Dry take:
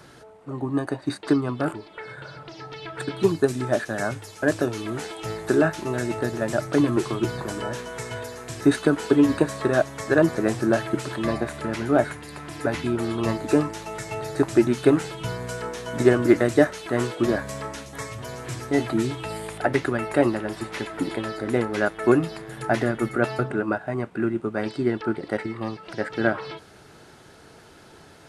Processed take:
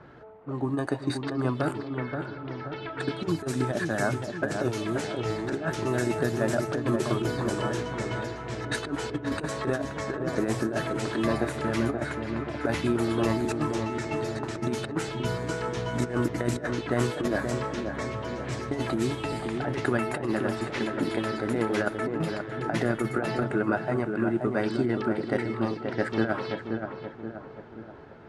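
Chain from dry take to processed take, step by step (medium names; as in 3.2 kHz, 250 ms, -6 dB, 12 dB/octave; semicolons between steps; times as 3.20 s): compressor with a negative ratio -23 dBFS, ratio -0.5; level-controlled noise filter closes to 1.5 kHz, open at -21.5 dBFS; filtered feedback delay 528 ms, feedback 52%, low-pass 1.4 kHz, level -5 dB; trim -3 dB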